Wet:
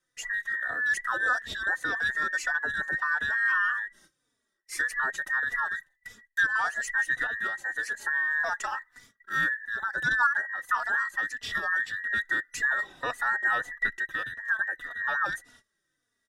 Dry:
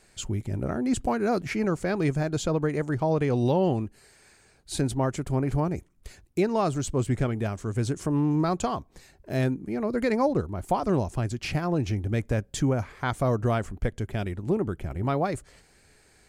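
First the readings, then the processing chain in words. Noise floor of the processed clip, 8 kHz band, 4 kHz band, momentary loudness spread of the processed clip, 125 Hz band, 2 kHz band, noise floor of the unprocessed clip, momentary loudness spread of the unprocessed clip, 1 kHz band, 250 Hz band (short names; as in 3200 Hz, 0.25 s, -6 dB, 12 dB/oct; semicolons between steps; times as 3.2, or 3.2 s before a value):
-80 dBFS, -3.0 dB, 0.0 dB, 7 LU, -27.0 dB, +15.5 dB, -60 dBFS, 7 LU, -0.5 dB, -24.0 dB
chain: band inversion scrambler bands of 2000 Hz; gate -52 dBFS, range -18 dB; endless flanger 3.4 ms -1.7 Hz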